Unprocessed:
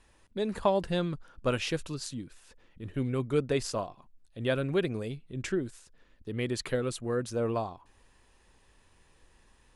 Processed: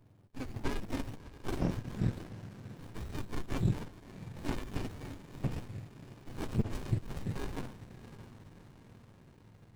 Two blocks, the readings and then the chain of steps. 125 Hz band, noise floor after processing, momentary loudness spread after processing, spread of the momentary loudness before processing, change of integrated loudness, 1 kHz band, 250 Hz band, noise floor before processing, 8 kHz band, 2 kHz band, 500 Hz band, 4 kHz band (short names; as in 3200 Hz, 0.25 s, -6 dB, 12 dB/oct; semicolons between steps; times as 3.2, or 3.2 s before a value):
-0.5 dB, -59 dBFS, 19 LU, 13 LU, -6.5 dB, -9.5 dB, -5.0 dB, -64 dBFS, -11.0 dB, -9.0 dB, -14.5 dB, -11.0 dB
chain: spectrum mirrored in octaves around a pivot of 980 Hz; diffused feedback echo 0.626 s, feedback 60%, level -15.5 dB; running maximum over 65 samples; gain +1 dB